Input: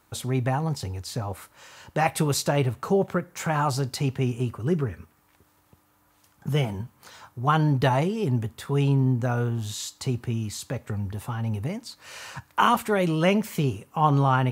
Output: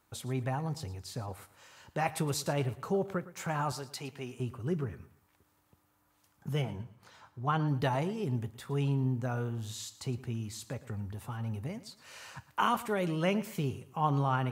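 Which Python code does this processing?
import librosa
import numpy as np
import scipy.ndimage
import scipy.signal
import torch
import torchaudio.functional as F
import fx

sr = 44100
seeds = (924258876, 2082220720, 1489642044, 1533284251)

y = fx.highpass(x, sr, hz=510.0, slope=6, at=(3.72, 4.4))
y = fx.high_shelf(y, sr, hz=6600.0, db=-10.0, at=(6.62, 7.68))
y = fx.echo_feedback(y, sr, ms=113, feedback_pct=30, wet_db=-17)
y = y * 10.0 ** (-8.5 / 20.0)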